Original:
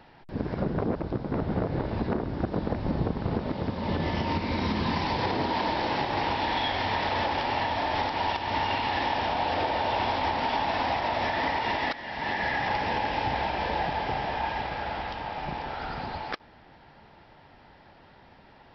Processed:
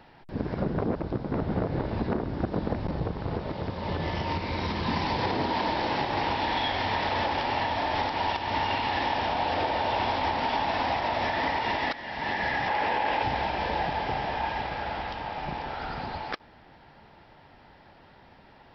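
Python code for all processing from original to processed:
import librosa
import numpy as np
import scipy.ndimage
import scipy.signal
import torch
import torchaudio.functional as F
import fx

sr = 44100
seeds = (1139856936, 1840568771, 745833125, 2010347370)

y = fx.chain(x, sr, fx.peak_eq(hz=240.0, db=-7.5, octaves=0.56),
    fx.transformer_sat(knee_hz=170.0), at=(2.86, 4.88))
y = fx.chain(y, sr, fx.bass_treble(bass_db=-11, treble_db=-8),
    fx.env_flatten(amount_pct=100), at=(12.69, 13.23))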